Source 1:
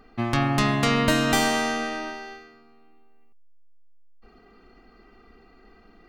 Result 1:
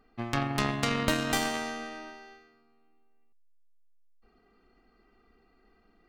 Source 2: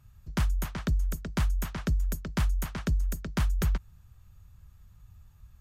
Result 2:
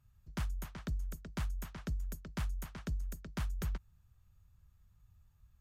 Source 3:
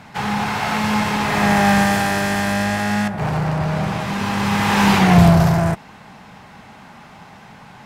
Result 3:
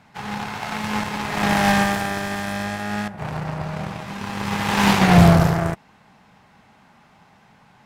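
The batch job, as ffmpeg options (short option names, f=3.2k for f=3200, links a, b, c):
-af "aeval=exprs='0.891*(cos(1*acos(clip(val(0)/0.891,-1,1)))-cos(1*PI/2))+0.0891*(cos(7*acos(clip(val(0)/0.891,-1,1)))-cos(7*PI/2))':c=same,volume=-1dB"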